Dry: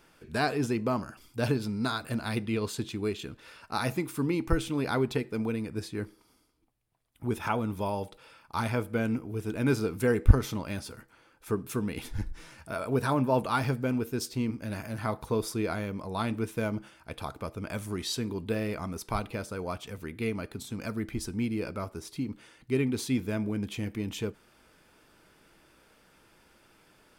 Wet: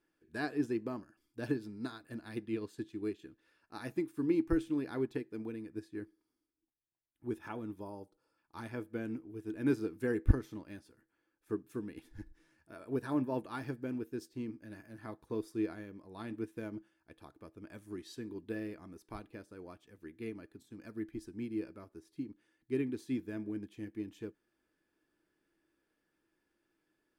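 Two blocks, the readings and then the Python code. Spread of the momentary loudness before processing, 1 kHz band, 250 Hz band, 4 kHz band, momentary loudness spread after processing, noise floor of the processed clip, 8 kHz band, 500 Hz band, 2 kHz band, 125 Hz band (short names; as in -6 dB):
11 LU, -15.0 dB, -6.0 dB, -17.5 dB, 18 LU, -83 dBFS, under -15 dB, -8.5 dB, -11.0 dB, -11.5 dB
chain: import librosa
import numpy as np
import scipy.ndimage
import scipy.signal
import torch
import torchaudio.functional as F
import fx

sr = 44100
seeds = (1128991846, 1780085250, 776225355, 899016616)

y = fx.spec_box(x, sr, start_s=7.81, length_s=0.57, low_hz=1500.0, high_hz=4100.0, gain_db=-11)
y = fx.small_body(y, sr, hz=(320.0, 1700.0), ring_ms=35, db=13)
y = fx.upward_expand(y, sr, threshold_db=-42.0, expansion=1.5)
y = y * 10.0 ** (-8.0 / 20.0)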